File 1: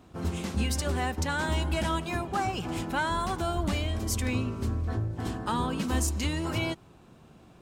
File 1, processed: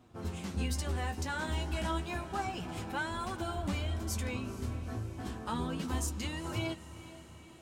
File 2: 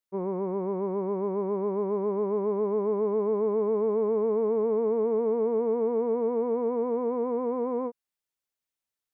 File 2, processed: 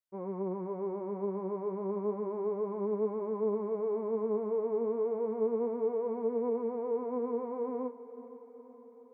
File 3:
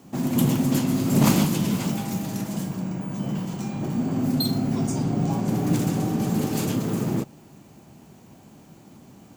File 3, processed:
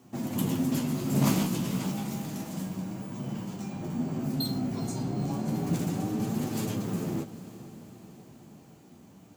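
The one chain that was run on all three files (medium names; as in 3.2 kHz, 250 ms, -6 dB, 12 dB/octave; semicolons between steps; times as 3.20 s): flange 0.31 Hz, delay 8 ms, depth 9 ms, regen +29%; echo that smears into a reverb 454 ms, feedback 61%, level -15 dB; trim -3 dB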